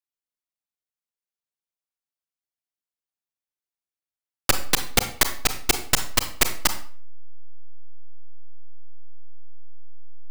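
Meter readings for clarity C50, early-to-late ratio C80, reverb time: 11.0 dB, 15.0 dB, 0.45 s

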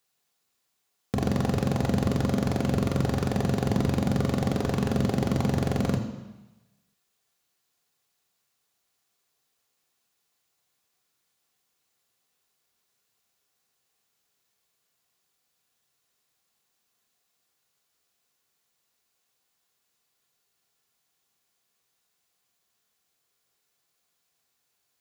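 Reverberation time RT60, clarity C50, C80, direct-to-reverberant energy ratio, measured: 1.1 s, 8.0 dB, 9.5 dB, 2.5 dB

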